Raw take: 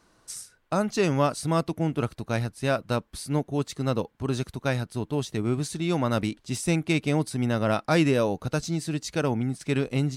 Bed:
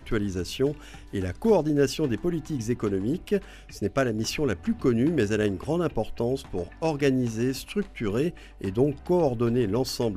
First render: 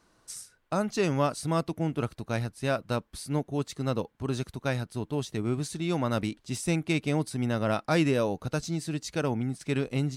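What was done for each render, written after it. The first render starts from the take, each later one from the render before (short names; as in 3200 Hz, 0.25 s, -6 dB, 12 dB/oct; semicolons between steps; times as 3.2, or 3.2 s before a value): gain -3 dB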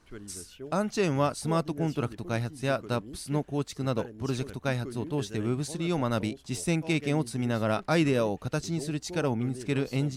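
add bed -17.5 dB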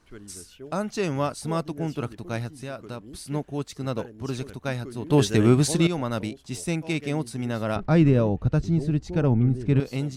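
2.52–3.14 compressor 2.5:1, threshold -33 dBFS; 5.1–5.87 gain +11.5 dB; 7.76–9.8 RIAA curve playback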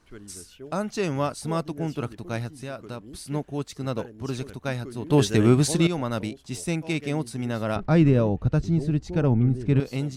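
nothing audible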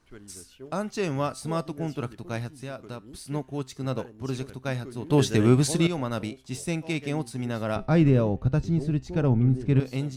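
in parallel at -11 dB: crossover distortion -42.5 dBFS; on the sum: resonator 130 Hz, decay 0.36 s, harmonics all, mix 40%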